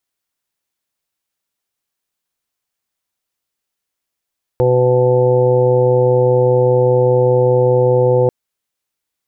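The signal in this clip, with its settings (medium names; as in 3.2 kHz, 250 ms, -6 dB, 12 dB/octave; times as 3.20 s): steady additive tone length 3.69 s, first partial 125 Hz, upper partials -16/-1.5/4/-16/-14/-8.5 dB, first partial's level -15.5 dB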